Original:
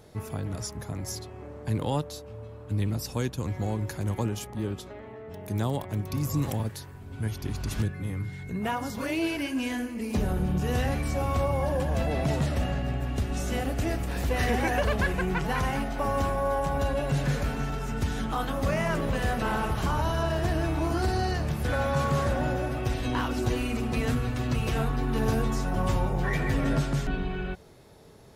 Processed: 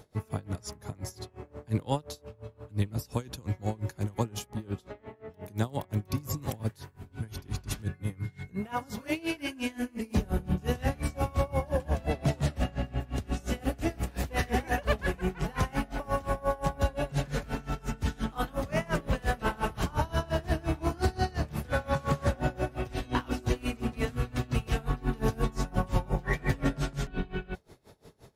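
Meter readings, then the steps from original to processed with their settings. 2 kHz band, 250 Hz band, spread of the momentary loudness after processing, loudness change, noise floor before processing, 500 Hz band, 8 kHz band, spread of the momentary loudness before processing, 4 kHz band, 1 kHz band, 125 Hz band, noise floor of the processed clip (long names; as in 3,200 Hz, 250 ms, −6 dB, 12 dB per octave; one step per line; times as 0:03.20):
−3.5 dB, −3.5 dB, 9 LU, −3.5 dB, −43 dBFS, −3.5 dB, −3.5 dB, 8 LU, −3.5 dB, −3.5 dB, −3.5 dB, −59 dBFS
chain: tremolo with a sine in dB 5.7 Hz, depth 24 dB
level +2.5 dB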